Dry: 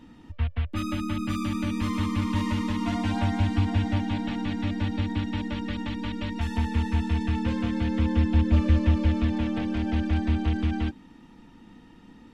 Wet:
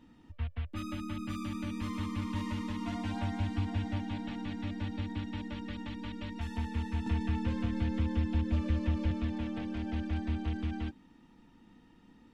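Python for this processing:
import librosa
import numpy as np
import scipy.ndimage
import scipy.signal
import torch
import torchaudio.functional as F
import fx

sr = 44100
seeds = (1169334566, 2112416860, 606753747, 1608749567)

y = fx.band_squash(x, sr, depth_pct=100, at=(7.06, 9.11))
y = F.gain(torch.from_numpy(y), -9.0).numpy()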